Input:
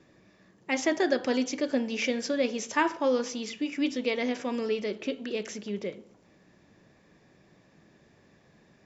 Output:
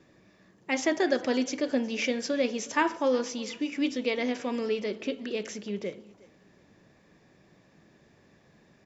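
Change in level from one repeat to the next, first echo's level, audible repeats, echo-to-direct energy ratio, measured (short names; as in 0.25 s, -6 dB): -11.0 dB, -22.5 dB, 2, -22.0 dB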